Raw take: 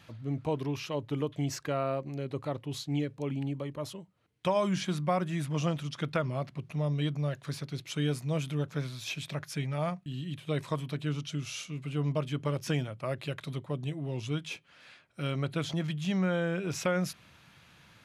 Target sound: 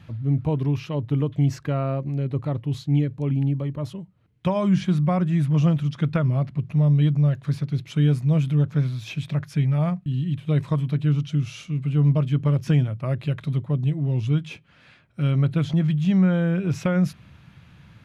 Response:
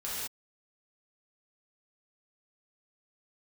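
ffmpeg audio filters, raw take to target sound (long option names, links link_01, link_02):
-af "bass=frequency=250:gain=13,treble=frequency=4000:gain=-7,volume=2dB"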